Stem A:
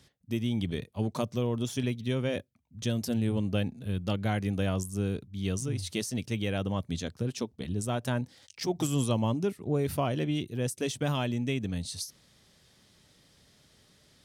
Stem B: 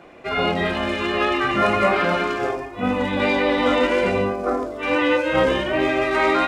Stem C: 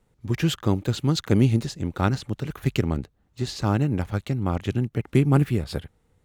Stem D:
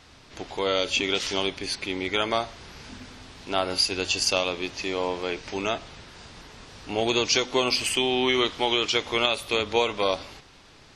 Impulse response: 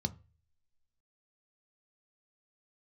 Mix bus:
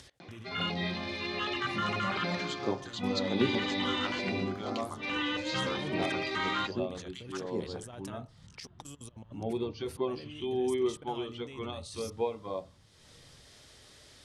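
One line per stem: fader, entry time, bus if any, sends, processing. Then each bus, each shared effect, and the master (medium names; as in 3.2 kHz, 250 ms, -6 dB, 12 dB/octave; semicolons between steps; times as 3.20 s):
-2.5 dB, 0.00 s, bus A, no send, peaking EQ 180 Hz -12 dB 0.84 oct; compressor with a negative ratio -40 dBFS, ratio -1
-6.5 dB, 0.20 s, bus A, send -11 dB, frequency weighting D
-7.5 dB, 2.00 s, bus B, send -4.5 dB, LFO high-pass sine 1.2 Hz 410–3100 Hz
-8.5 dB, 2.45 s, bus B, send -4.5 dB, low-pass 2.9 kHz; spectral contrast expander 1.5:1
bus A: 0.0 dB, level held to a coarse grid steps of 23 dB; peak limiter -21.5 dBFS, peak gain reduction 10 dB
bus B: 0.0 dB, compression, threshold -39 dBFS, peak gain reduction 14 dB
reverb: on, RT60 0.35 s, pre-delay 3 ms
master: low-pass 11 kHz 24 dB/octave; upward compressor, threshold -43 dBFS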